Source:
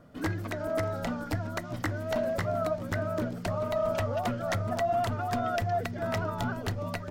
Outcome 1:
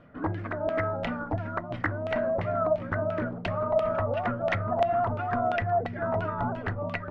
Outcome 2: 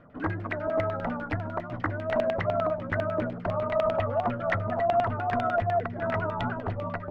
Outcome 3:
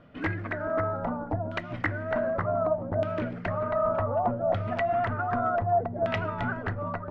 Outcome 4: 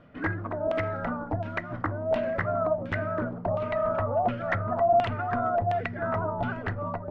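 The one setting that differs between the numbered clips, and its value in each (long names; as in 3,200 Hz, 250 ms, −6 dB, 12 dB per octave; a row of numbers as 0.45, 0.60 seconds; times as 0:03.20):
auto-filter low-pass, speed: 2.9, 10, 0.66, 1.4 Hertz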